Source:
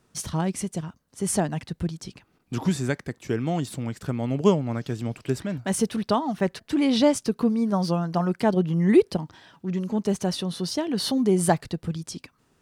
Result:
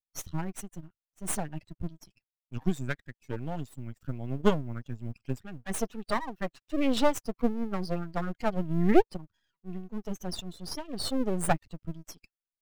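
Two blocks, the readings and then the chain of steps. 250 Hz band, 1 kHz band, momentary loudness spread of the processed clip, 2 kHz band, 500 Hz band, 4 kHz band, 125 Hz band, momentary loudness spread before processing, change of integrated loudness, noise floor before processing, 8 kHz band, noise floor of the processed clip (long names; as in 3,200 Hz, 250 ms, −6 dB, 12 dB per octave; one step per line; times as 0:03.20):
−8.0 dB, −4.5 dB, 15 LU, −3.5 dB, −7.0 dB, −7.0 dB, −8.0 dB, 11 LU, −7.0 dB, −67 dBFS, −7.0 dB, below −85 dBFS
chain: spectral dynamics exaggerated over time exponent 2
half-wave rectification
floating-point word with a short mantissa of 6 bits
level +2.5 dB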